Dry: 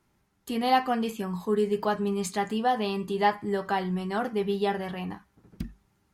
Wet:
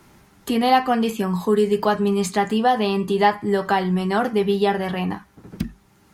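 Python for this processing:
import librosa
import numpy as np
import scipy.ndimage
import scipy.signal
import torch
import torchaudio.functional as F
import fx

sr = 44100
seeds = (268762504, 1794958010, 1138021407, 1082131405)

y = fx.band_squash(x, sr, depth_pct=40)
y = F.gain(torch.from_numpy(y), 7.5).numpy()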